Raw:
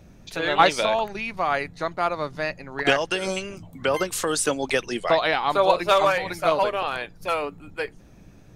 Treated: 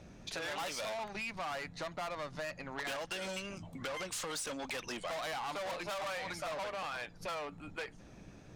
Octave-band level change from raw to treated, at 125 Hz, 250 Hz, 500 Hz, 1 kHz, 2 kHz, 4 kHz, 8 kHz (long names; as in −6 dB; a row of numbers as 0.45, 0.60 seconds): −13.0, −15.5, −18.0, −17.5, −14.0, −13.0, −11.5 decibels